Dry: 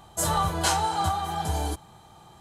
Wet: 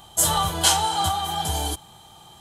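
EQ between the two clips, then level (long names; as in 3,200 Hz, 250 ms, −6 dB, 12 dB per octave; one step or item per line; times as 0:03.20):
parametric band 820 Hz +2.5 dB 0.34 octaves
parametric band 3,200 Hz +9.5 dB 0.32 octaves
high-shelf EQ 4,700 Hz +11 dB
0.0 dB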